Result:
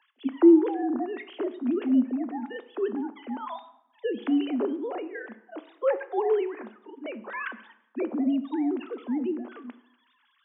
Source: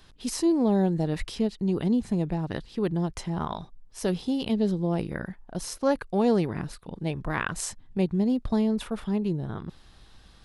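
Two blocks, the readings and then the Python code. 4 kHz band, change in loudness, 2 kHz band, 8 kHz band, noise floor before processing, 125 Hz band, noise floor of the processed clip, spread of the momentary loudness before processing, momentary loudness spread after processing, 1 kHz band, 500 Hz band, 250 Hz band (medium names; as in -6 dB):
-8.5 dB, +0.5 dB, -1.5 dB, under -40 dB, -54 dBFS, under -25 dB, -68 dBFS, 12 LU, 18 LU, -1.0 dB, +1.0 dB, +0.5 dB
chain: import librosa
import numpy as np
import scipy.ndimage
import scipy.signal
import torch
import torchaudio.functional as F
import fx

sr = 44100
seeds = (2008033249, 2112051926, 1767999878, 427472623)

y = fx.sine_speech(x, sr)
y = scipy.signal.sosfilt(scipy.signal.butter(16, 220.0, 'highpass', fs=sr, output='sos'), y)
y = fx.rev_plate(y, sr, seeds[0], rt60_s=0.81, hf_ratio=0.75, predelay_ms=0, drr_db=11.5)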